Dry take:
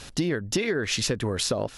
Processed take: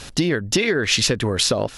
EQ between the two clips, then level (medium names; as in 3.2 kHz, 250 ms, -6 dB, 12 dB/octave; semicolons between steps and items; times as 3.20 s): dynamic bell 3.2 kHz, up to +4 dB, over -38 dBFS, Q 0.71; +5.5 dB